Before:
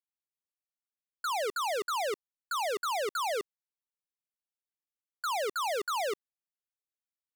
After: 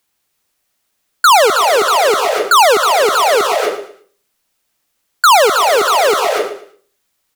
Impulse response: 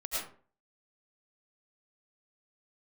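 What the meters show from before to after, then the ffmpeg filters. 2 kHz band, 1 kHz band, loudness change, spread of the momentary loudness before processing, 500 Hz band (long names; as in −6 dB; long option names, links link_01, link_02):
+22.0 dB, +22.5 dB, +21.5 dB, 7 LU, +21.5 dB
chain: -filter_complex "[0:a]aecho=1:1:113|226|339:0.188|0.0527|0.0148,asplit=2[link_01][link_02];[1:a]atrim=start_sample=2205,adelay=135[link_03];[link_02][link_03]afir=irnorm=-1:irlink=0,volume=-10.5dB[link_04];[link_01][link_04]amix=inputs=2:normalize=0,alimiter=level_in=32dB:limit=-1dB:release=50:level=0:latency=1,volume=-5dB"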